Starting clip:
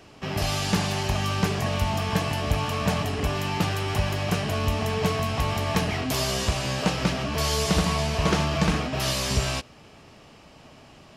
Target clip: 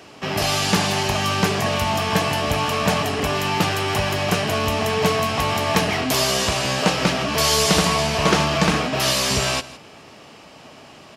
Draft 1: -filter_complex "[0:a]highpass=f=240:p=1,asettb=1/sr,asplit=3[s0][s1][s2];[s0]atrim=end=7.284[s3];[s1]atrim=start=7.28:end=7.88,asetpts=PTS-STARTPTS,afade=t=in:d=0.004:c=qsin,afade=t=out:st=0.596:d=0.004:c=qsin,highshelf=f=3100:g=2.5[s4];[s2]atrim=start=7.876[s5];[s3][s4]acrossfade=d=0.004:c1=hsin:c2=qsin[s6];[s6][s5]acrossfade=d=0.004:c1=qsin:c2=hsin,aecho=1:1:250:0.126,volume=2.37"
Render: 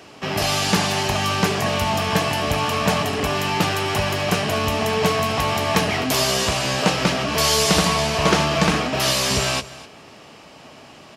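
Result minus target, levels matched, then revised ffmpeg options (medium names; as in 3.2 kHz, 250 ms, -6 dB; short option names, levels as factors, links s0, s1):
echo 88 ms late
-filter_complex "[0:a]highpass=f=240:p=1,asettb=1/sr,asplit=3[s0][s1][s2];[s0]atrim=end=7.284[s3];[s1]atrim=start=7.28:end=7.88,asetpts=PTS-STARTPTS,afade=t=in:d=0.004:c=qsin,afade=t=out:st=0.596:d=0.004:c=qsin,highshelf=f=3100:g=2.5[s4];[s2]atrim=start=7.876[s5];[s3][s4]acrossfade=d=0.004:c1=hsin:c2=qsin[s6];[s6][s5]acrossfade=d=0.004:c1=qsin:c2=hsin,aecho=1:1:162:0.126,volume=2.37"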